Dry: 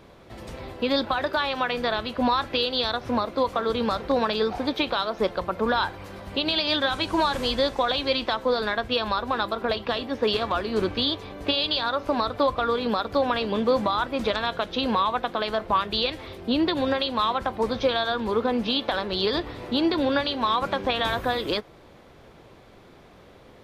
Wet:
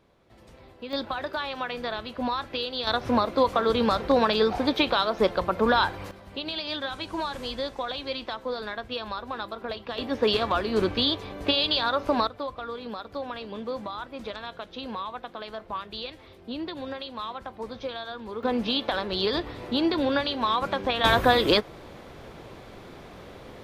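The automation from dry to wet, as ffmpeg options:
-af "asetnsamples=n=441:p=0,asendcmd='0.93 volume volume -6dB;2.87 volume volume 2dB;6.11 volume volume -8dB;9.98 volume volume 0.5dB;12.27 volume volume -11dB;18.43 volume volume -1.5dB;21.04 volume volume 6dB',volume=0.224"

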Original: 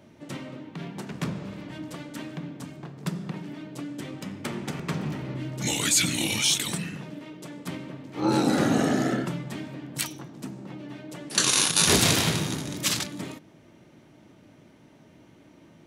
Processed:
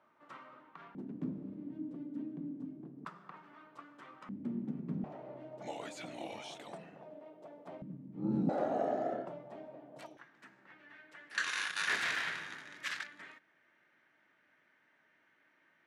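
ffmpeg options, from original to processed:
-af "asetnsamples=n=441:p=0,asendcmd='0.95 bandpass f 270;3.05 bandpass f 1200;4.29 bandpass f 230;5.04 bandpass f 670;7.82 bandpass f 190;8.49 bandpass f 650;10.17 bandpass f 1700',bandpass=f=1200:t=q:w=3.9:csg=0"

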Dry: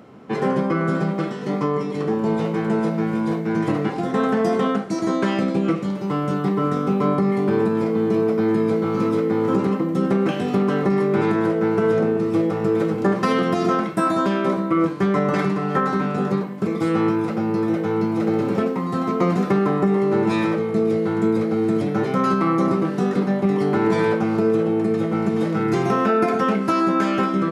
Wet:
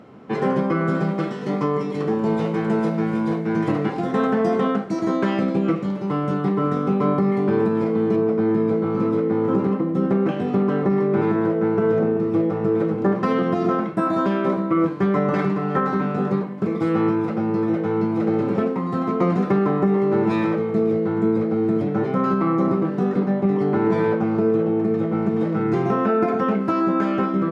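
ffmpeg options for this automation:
-af "asetnsamples=n=441:p=0,asendcmd='1.04 lowpass f 6400;3.23 lowpass f 4400;4.27 lowpass f 2700;8.16 lowpass f 1300;14.13 lowpass f 2100;20.9 lowpass f 1300',lowpass=f=4400:p=1"

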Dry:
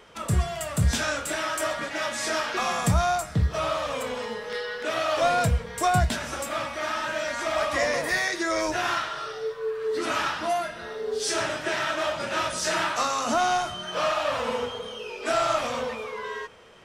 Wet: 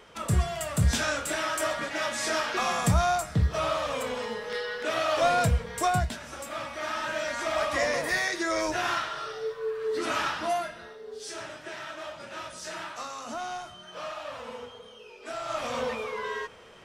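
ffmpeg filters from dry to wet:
-af "volume=9.44,afade=t=out:st=5.77:d=0.41:silence=0.354813,afade=t=in:st=6.18:d=0.94:silence=0.398107,afade=t=out:st=10.55:d=0.43:silence=0.316228,afade=t=in:st=15.44:d=0.45:silence=0.237137"

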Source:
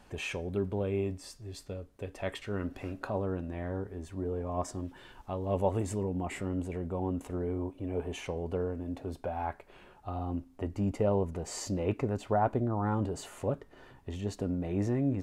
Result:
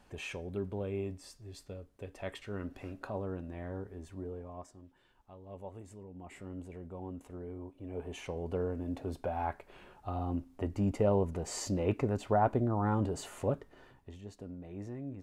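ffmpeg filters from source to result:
-af "volume=3.98,afade=t=out:st=4.1:d=0.6:silence=0.251189,afade=t=in:st=6.07:d=0.45:silence=0.446684,afade=t=in:st=7.7:d=1.14:silence=0.316228,afade=t=out:st=13.51:d=0.68:silence=0.237137"

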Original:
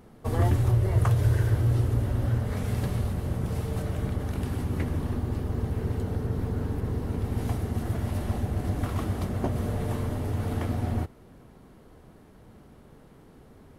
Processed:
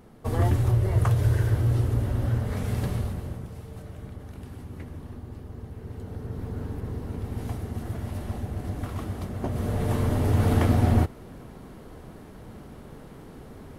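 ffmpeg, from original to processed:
-af "volume=8.91,afade=t=out:st=2.91:d=0.6:silence=0.281838,afade=t=in:st=5.81:d=0.79:silence=0.446684,afade=t=in:st=9.38:d=1.07:silence=0.266073"

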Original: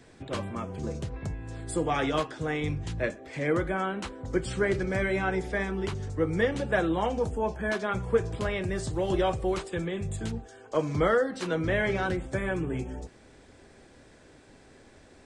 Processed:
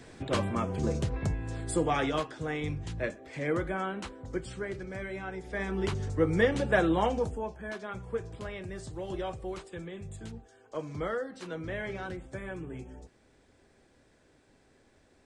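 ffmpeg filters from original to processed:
-af "volume=5.96,afade=t=out:st=1.24:d=0.97:silence=0.421697,afade=t=out:st=4.01:d=0.64:silence=0.446684,afade=t=in:st=5.43:d=0.43:silence=0.266073,afade=t=out:st=7.03:d=0.48:silence=0.298538"

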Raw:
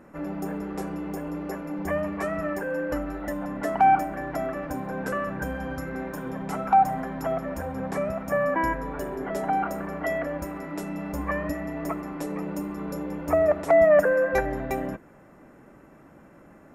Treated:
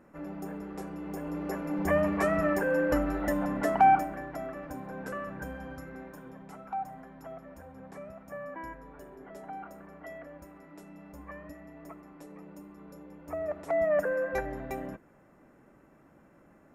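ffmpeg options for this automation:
-af "volume=3.35,afade=t=in:st=0.95:d=1.09:silence=0.334965,afade=t=out:st=3.38:d=0.93:silence=0.298538,afade=t=out:st=5.47:d=1.09:silence=0.398107,afade=t=in:st=13.19:d=0.94:silence=0.375837"

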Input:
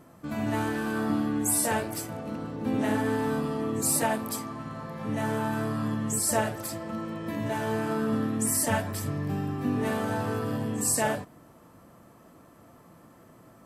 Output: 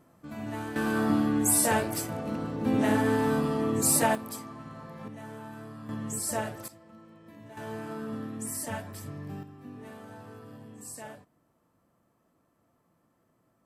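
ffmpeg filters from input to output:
-af "asetnsamples=n=441:p=0,asendcmd='0.76 volume volume 2dB;4.15 volume volume -6dB;5.08 volume volume -14dB;5.89 volume volume -5.5dB;6.68 volume volume -18dB;7.57 volume volume -9dB;9.43 volume volume -17dB',volume=0.422"

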